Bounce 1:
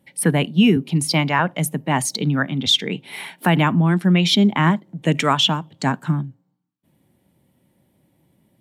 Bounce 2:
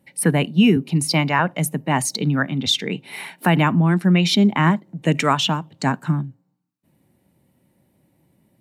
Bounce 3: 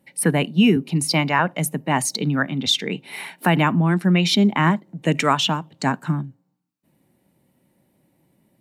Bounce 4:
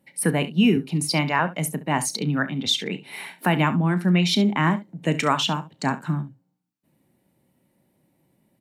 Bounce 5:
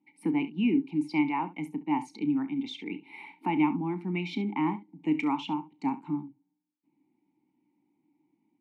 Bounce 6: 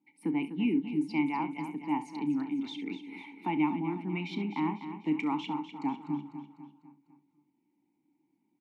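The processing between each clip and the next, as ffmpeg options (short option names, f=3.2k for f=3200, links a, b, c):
-af "bandreject=f=3.3k:w=8"
-af "equalizer=f=81:t=o:w=1.4:g=-6.5"
-af "aecho=1:1:33|68:0.188|0.168,volume=-3dB"
-filter_complex "[0:a]asplit=3[a][b][c];[a]bandpass=f=300:t=q:w=8,volume=0dB[d];[b]bandpass=f=870:t=q:w=8,volume=-6dB[e];[c]bandpass=f=2.24k:t=q:w=8,volume=-9dB[f];[d][e][f]amix=inputs=3:normalize=0,volume=3.5dB"
-af "aecho=1:1:249|498|747|996|1245:0.299|0.149|0.0746|0.0373|0.0187,volume=-3dB"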